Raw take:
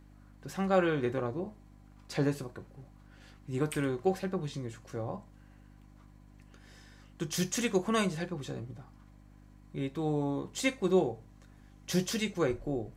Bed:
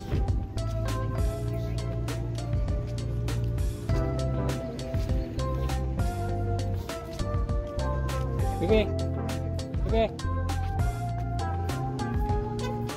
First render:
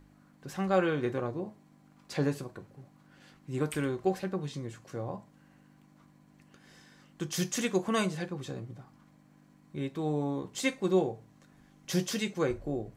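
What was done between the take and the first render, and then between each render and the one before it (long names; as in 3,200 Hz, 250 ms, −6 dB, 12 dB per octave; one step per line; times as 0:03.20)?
hum removal 50 Hz, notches 2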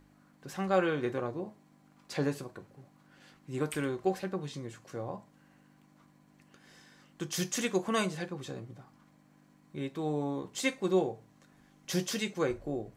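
low-shelf EQ 190 Hz −5.5 dB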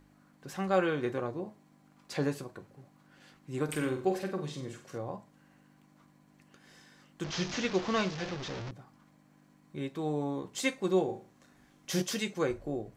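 0:03.64–0:04.98: flutter between parallel walls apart 7.9 metres, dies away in 0.4 s
0:07.24–0:08.71: linear delta modulator 32 kbit/s, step −33 dBFS
0:11.05–0:12.02: flutter between parallel walls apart 6.4 metres, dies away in 0.36 s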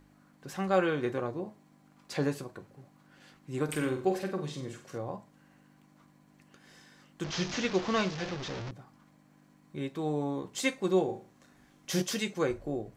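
level +1 dB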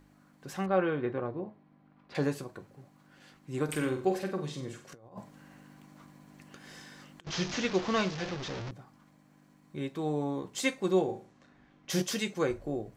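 0:00.66–0:02.15: high-frequency loss of the air 350 metres
0:04.92–0:07.27: compressor whose output falls as the input rises −45 dBFS, ratio −0.5
0:11.02–0:11.90: low-pass that shuts in the quiet parts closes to 2,800 Hz, open at −34 dBFS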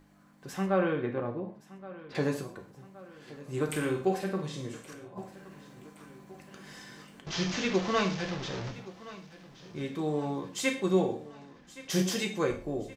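repeating echo 1,121 ms, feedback 55%, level −18 dB
reverb whose tail is shaped and stops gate 160 ms falling, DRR 4.5 dB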